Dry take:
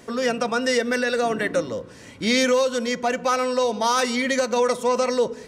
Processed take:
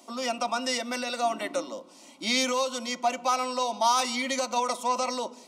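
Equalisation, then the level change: HPF 350 Hz 12 dB/oct; dynamic EQ 1800 Hz, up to +7 dB, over -39 dBFS, Q 1.1; fixed phaser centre 450 Hz, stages 6; -1.5 dB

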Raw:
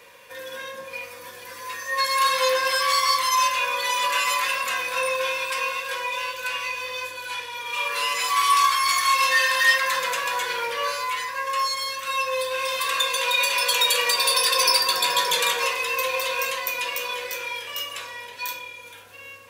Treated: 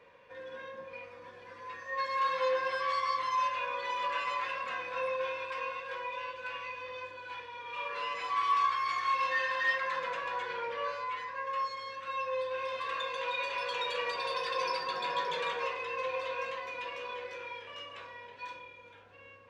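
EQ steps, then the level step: tape spacing loss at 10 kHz 35 dB; -5.0 dB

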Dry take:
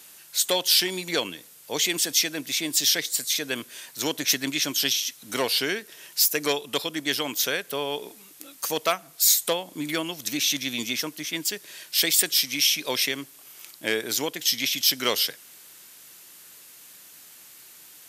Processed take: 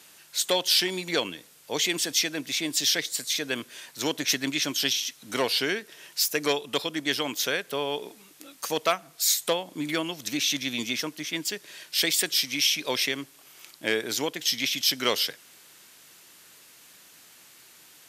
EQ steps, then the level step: high shelf 8600 Hz -10 dB; 0.0 dB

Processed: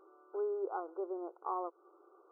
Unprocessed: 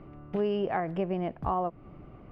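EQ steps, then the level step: brick-wall FIR band-pass 330–1500 Hz; bell 640 Hz -13 dB 0.31 oct; -5.0 dB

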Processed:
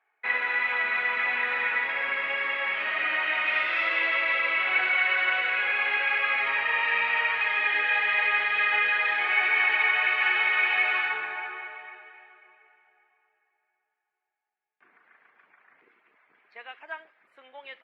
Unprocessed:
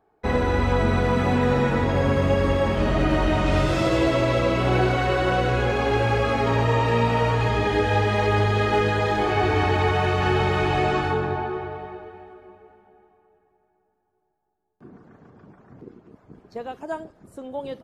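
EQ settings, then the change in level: resonant high-pass 2200 Hz, resonance Q 3.4; air absorption 480 m; high shelf 3300 Hz -8 dB; +8.0 dB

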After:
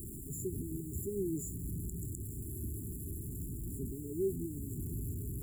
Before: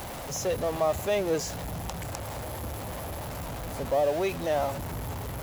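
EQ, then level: brick-wall FIR band-stop 420–6900 Hz; -3.0 dB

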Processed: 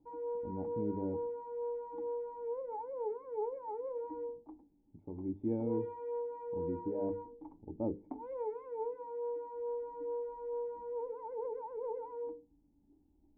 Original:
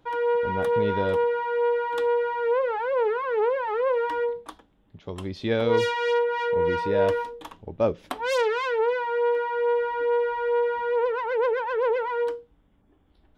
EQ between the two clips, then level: vocal tract filter u; low shelf 140 Hz +6.5 dB; notches 50/100/150/200/250/300/350/400/450/500 Hz; 0.0 dB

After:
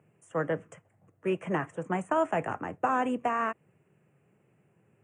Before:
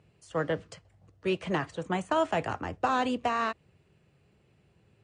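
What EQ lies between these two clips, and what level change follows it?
HPF 120 Hz 24 dB/oct; Butterworth band-stop 4300 Hz, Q 0.84; 0.0 dB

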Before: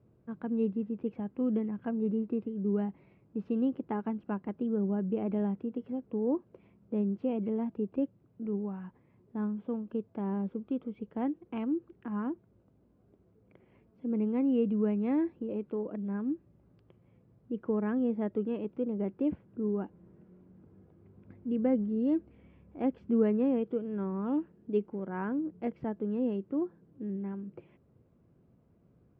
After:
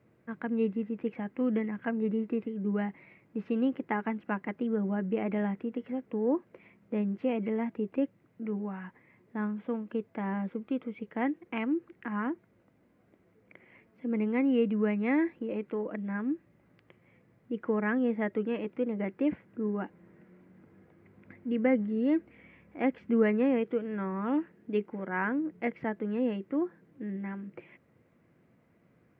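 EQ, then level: HPF 240 Hz 6 dB/oct; bell 2000 Hz +14.5 dB 0.81 oct; notch 400 Hz, Q 12; +3.5 dB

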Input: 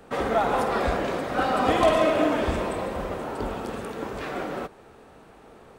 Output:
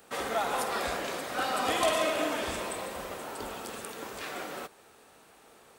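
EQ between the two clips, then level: tilt +2.5 dB/oct; high shelf 4100 Hz +6.5 dB; -6.5 dB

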